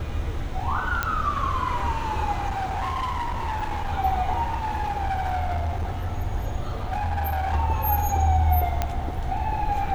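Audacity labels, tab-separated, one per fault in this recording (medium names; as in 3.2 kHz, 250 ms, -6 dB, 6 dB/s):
1.030000	1.030000	pop -9 dBFS
2.480000	3.930000	clipped -24 dBFS
4.420000	6.180000	clipped -22.5 dBFS
6.690000	7.540000	clipped -22.5 dBFS
8.820000	8.820000	pop -10 dBFS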